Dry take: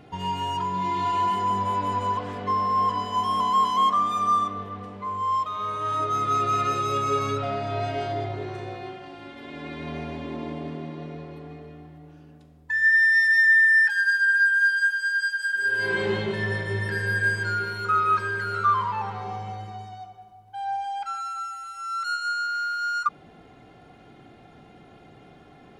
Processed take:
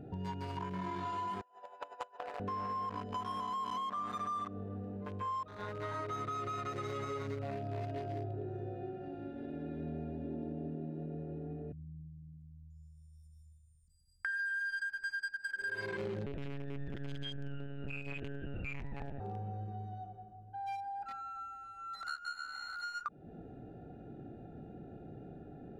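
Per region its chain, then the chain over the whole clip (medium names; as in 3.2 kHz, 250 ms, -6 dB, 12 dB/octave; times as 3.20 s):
1.41–2.40 s: high-pass 690 Hz 24 dB/octave + compressor with a negative ratio -32 dBFS, ratio -0.5
11.72–14.25 s: inverse Chebyshev band-stop 610–1900 Hz, stop band 80 dB + loudspeaker Doppler distortion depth 0.16 ms
16.26–19.20 s: comb filter that takes the minimum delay 0.41 ms + monotone LPC vocoder at 8 kHz 140 Hz
whole clip: local Wiener filter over 41 samples; peak limiter -22.5 dBFS; compression 3:1, threshold -43 dBFS; trim +3 dB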